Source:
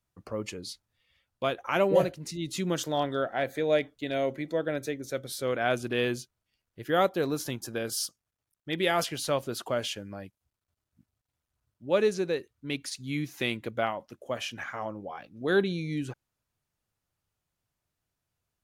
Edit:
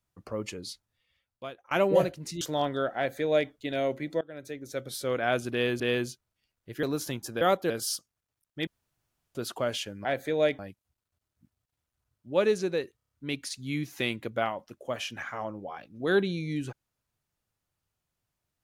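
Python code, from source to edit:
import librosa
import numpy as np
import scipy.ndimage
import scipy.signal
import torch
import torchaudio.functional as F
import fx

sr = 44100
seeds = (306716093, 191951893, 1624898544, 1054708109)

y = fx.edit(x, sr, fx.fade_out_to(start_s=0.68, length_s=1.03, floor_db=-23.5),
    fx.cut(start_s=2.41, length_s=0.38),
    fx.duplicate(start_s=3.35, length_s=0.54, to_s=10.15),
    fx.fade_in_from(start_s=4.59, length_s=0.67, floor_db=-22.5),
    fx.repeat(start_s=5.9, length_s=0.28, count=2),
    fx.move(start_s=6.93, length_s=0.29, to_s=7.8),
    fx.room_tone_fill(start_s=8.77, length_s=0.68),
    fx.stutter(start_s=12.52, slice_s=0.03, count=6), tone=tone)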